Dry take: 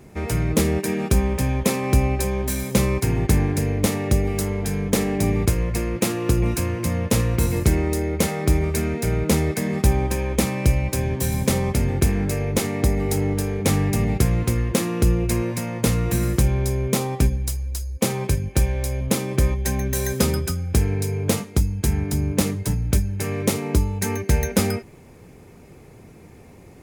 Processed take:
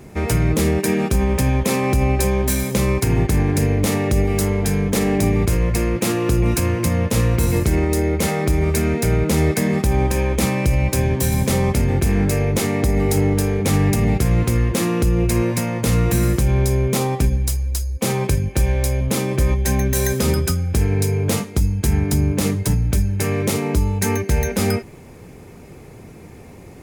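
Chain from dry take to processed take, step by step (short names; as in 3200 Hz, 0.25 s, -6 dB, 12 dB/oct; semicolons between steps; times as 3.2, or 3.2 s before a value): limiter -14 dBFS, peak gain reduction 9.5 dB; gain +5.5 dB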